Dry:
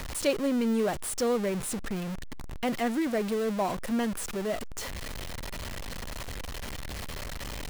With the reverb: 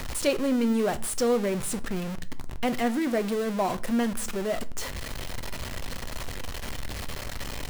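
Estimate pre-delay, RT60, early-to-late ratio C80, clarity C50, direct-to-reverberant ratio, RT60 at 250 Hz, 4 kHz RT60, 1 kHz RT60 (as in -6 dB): 8 ms, 0.40 s, 25.5 dB, 20.0 dB, 12.0 dB, 0.65 s, 0.30 s, 0.35 s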